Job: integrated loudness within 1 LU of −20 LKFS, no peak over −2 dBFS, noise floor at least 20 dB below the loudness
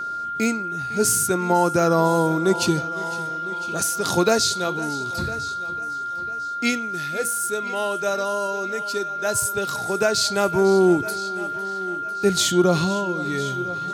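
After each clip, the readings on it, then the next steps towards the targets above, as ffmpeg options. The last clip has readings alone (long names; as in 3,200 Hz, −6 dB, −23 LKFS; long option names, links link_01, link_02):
interfering tone 1,400 Hz; level of the tone −26 dBFS; integrated loudness −22.0 LKFS; sample peak −6.0 dBFS; target loudness −20.0 LKFS
→ -af "bandreject=frequency=1400:width=30"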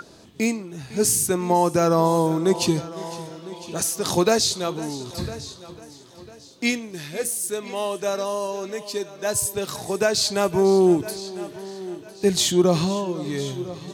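interfering tone none found; integrated loudness −22.5 LKFS; sample peak −7.0 dBFS; target loudness −20.0 LKFS
→ -af "volume=2.5dB"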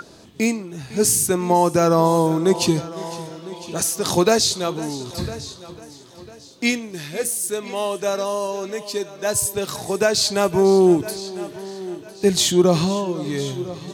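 integrated loudness −20.0 LKFS; sample peak −4.5 dBFS; background noise floor −44 dBFS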